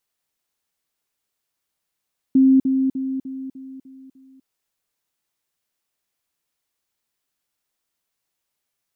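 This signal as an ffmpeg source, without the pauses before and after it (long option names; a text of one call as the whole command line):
ffmpeg -f lavfi -i "aevalsrc='pow(10,(-10-6*floor(t/0.3))/20)*sin(2*PI*265*t)*clip(min(mod(t,0.3),0.25-mod(t,0.3))/0.005,0,1)':duration=2.1:sample_rate=44100" out.wav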